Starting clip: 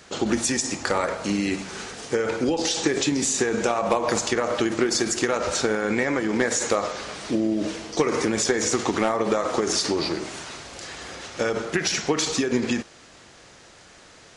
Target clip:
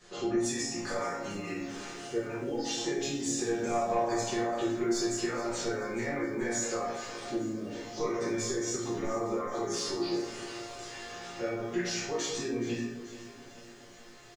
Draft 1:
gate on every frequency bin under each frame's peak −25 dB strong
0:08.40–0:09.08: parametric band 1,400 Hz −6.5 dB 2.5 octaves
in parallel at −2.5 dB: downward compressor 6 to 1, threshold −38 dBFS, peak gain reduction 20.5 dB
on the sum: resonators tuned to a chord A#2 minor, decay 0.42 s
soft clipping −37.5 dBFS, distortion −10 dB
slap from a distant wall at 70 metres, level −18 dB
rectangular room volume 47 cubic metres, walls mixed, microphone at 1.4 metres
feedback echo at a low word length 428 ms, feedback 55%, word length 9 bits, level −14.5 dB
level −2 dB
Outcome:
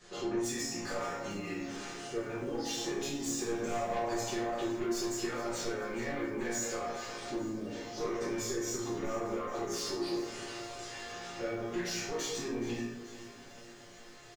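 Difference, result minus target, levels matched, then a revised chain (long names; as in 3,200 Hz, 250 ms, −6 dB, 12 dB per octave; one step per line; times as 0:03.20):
soft clipping: distortion +13 dB
gate on every frequency bin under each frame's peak −25 dB strong
0:08.40–0:09.08: parametric band 1,400 Hz −6.5 dB 2.5 octaves
in parallel at −2.5 dB: downward compressor 6 to 1, threshold −38 dBFS, peak gain reduction 20.5 dB
on the sum: resonators tuned to a chord A#2 minor, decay 0.42 s
soft clipping −26.5 dBFS, distortion −23 dB
slap from a distant wall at 70 metres, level −18 dB
rectangular room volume 47 cubic metres, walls mixed, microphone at 1.4 metres
feedback echo at a low word length 428 ms, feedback 55%, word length 9 bits, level −14.5 dB
level −2 dB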